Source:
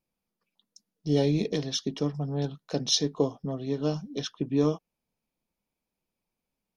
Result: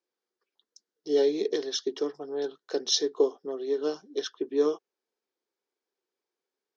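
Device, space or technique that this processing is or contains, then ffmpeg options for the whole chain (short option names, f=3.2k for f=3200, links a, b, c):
phone speaker on a table: -af "highpass=f=350:w=0.5412,highpass=f=350:w=1.3066,equalizer=f=390:t=q:w=4:g=10,equalizer=f=630:t=q:w=4:g=-6,equalizer=f=920:t=q:w=4:g=-3,equalizer=f=1.6k:t=q:w=4:g=5,equalizer=f=2.5k:t=q:w=4:g=-8,lowpass=f=7k:w=0.5412,lowpass=f=7k:w=1.3066"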